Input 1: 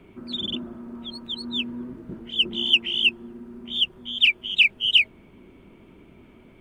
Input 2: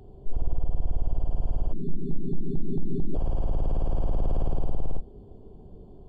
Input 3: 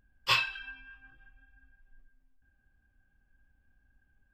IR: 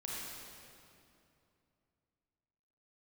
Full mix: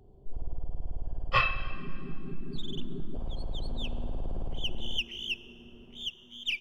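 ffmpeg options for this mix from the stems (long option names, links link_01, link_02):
-filter_complex "[0:a]aeval=exprs='if(lt(val(0),0),0.708*val(0),val(0))':channel_layout=same,adelay=2250,volume=-13.5dB,asplit=2[link_01][link_02];[link_02]volume=-15dB[link_03];[1:a]volume=-9dB[link_04];[2:a]lowpass=1800,aecho=1:1:1.6:0.88,adelay=1050,volume=2.5dB,asplit=2[link_05][link_06];[link_06]volume=-11.5dB[link_07];[3:a]atrim=start_sample=2205[link_08];[link_03][link_07]amix=inputs=2:normalize=0[link_09];[link_09][link_08]afir=irnorm=-1:irlink=0[link_10];[link_01][link_04][link_05][link_10]amix=inputs=4:normalize=0"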